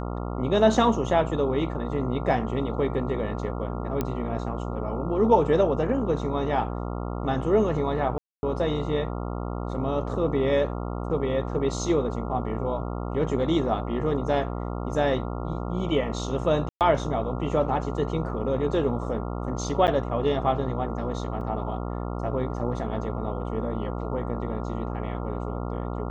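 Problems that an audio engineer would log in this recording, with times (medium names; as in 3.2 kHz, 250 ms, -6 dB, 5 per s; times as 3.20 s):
buzz 60 Hz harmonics 23 -31 dBFS
4.01 s: pop -13 dBFS
8.18–8.43 s: dropout 251 ms
16.69–16.81 s: dropout 118 ms
19.87–19.88 s: dropout 9.1 ms
21.41 s: dropout 2.6 ms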